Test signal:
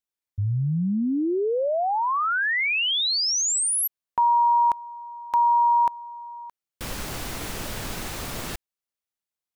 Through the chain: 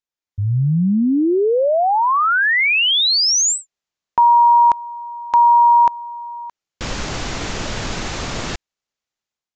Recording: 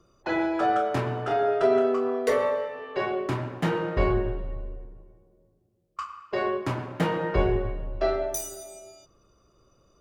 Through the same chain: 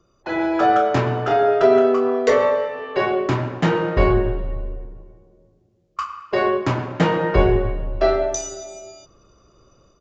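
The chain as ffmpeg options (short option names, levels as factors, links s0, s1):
-af "dynaudnorm=f=290:g=3:m=2.51,aresample=16000,aresample=44100"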